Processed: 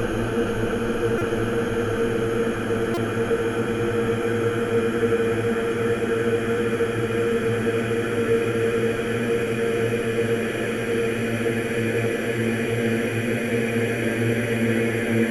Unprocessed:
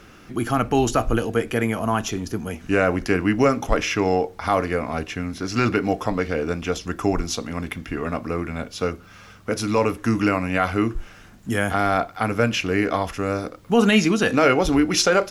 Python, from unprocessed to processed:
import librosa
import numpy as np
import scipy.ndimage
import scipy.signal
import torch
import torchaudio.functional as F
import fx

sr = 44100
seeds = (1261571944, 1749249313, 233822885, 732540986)

y = fx.paulstretch(x, sr, seeds[0], factor=48.0, window_s=0.5, from_s=1.26)
y = fx.buffer_glitch(y, sr, at_s=(1.18, 2.94), block=128, repeats=10)